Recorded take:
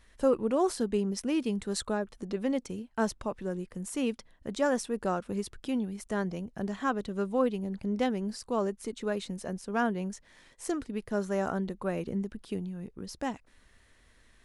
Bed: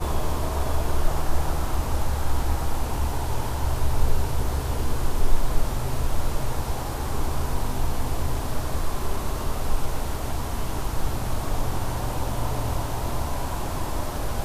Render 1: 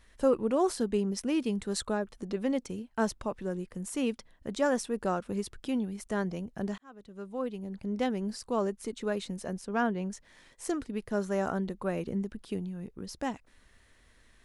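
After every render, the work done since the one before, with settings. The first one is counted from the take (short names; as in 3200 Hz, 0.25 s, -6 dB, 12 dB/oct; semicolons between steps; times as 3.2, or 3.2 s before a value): 6.78–8.25 fade in; 9.66–10.11 air absorption 57 m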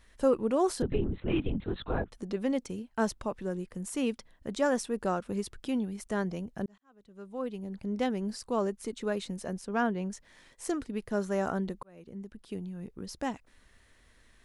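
0.82–2.12 LPC vocoder at 8 kHz whisper; 6.66–7.55 fade in; 11.83–12.92 fade in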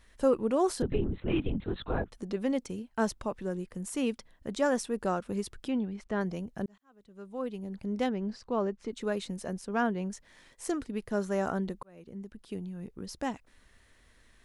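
5.68–6.21 LPF 3500 Hz; 8.09–8.92 air absorption 160 m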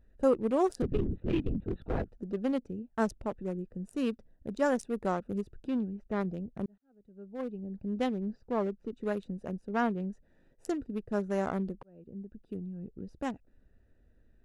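Wiener smoothing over 41 samples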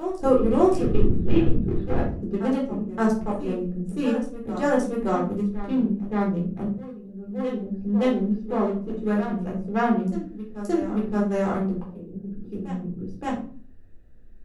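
reverse echo 0.573 s -10.5 dB; shoebox room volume 350 m³, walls furnished, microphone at 3.9 m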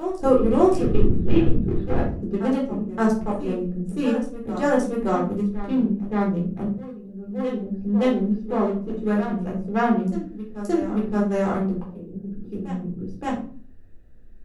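gain +1.5 dB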